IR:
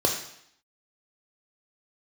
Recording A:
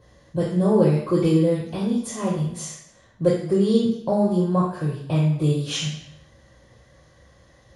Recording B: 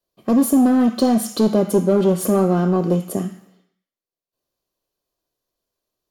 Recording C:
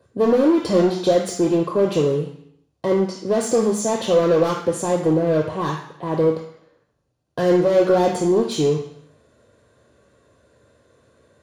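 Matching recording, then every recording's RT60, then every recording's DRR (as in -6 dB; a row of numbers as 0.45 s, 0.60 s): C; 0.70 s, 0.70 s, 0.70 s; -5.5 dB, 10.5 dB, 2.5 dB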